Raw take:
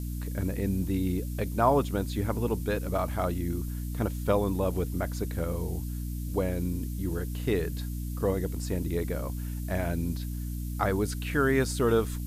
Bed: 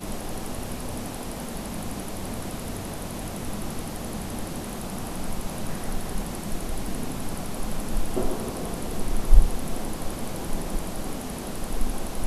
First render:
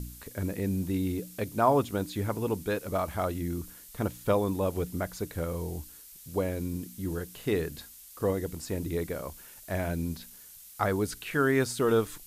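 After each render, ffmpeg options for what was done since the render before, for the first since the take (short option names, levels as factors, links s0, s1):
-af "bandreject=f=60:t=h:w=4,bandreject=f=120:t=h:w=4,bandreject=f=180:t=h:w=4,bandreject=f=240:t=h:w=4,bandreject=f=300:t=h:w=4"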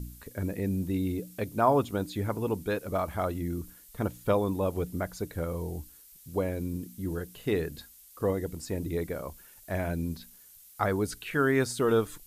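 -af "afftdn=nr=6:nf=-50"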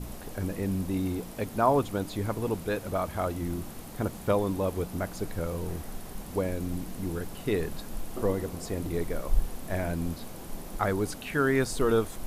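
-filter_complex "[1:a]volume=0.299[s0];[0:a][s0]amix=inputs=2:normalize=0"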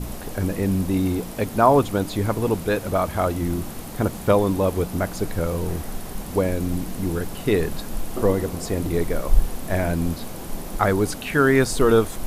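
-af "volume=2.51,alimiter=limit=0.708:level=0:latency=1"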